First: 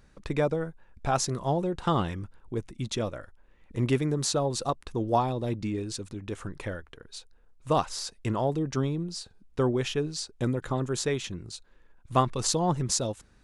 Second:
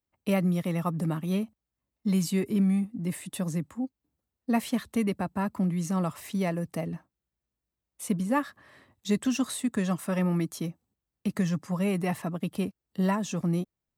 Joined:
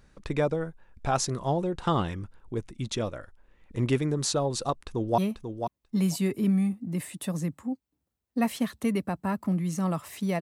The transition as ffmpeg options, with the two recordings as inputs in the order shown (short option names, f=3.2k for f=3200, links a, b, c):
-filter_complex "[0:a]apad=whole_dur=10.41,atrim=end=10.41,atrim=end=5.182[a];[1:a]atrim=start=1.298:end=6.53[b];[a][b]acrossfade=d=0.004:c1=hsin:c2=hsin,asplit=2[c][d];[d]afade=t=in:st=4.85:d=0.01,afade=t=out:st=5.18:d=0.01,aecho=0:1:490|980:0.446684|0.0446684[e];[c][e]amix=inputs=2:normalize=0"